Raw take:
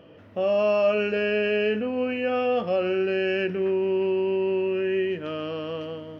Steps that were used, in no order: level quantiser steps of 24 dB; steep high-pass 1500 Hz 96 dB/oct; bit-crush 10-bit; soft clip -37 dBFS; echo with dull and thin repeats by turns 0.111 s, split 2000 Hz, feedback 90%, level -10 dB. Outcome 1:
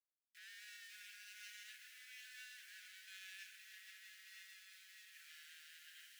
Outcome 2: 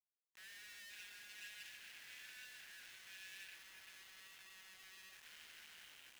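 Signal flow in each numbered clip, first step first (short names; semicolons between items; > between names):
soft clip > echo with dull and thin repeats by turns > level quantiser > bit-crush > steep high-pass; echo with dull and thin repeats by turns > soft clip > level quantiser > steep high-pass > bit-crush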